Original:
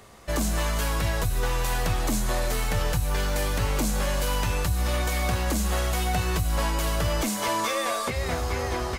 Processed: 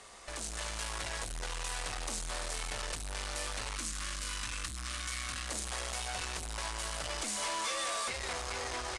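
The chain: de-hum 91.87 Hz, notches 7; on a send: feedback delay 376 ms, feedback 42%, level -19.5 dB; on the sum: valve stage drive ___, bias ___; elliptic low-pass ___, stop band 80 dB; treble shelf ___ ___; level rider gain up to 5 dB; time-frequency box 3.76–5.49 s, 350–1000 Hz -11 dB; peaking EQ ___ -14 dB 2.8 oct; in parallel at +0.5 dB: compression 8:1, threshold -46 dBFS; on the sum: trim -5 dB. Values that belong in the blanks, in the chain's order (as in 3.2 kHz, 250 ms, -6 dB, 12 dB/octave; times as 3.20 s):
33 dB, 0.4, 9.5 kHz, 6.4 kHz, +6.5 dB, 130 Hz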